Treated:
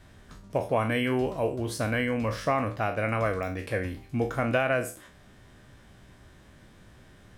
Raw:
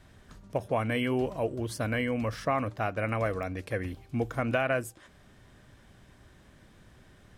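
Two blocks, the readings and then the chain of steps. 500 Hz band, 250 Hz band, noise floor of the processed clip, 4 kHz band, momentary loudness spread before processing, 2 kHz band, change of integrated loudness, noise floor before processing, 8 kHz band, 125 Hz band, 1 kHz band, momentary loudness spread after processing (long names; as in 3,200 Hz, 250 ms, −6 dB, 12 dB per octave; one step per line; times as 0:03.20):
+2.5 dB, +2.0 dB, −54 dBFS, +3.0 dB, 7 LU, +3.0 dB, +2.5 dB, −58 dBFS, +3.5 dB, +2.0 dB, +3.0 dB, 7 LU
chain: peak hold with a decay on every bin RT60 0.36 s
level +1.5 dB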